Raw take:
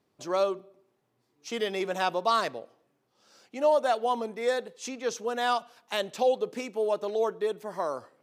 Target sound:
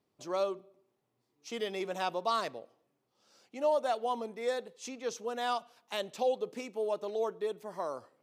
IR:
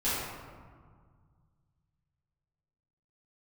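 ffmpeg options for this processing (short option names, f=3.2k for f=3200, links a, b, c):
-af "equalizer=f=1.6k:t=o:w=0.44:g=-3.5,volume=-5.5dB"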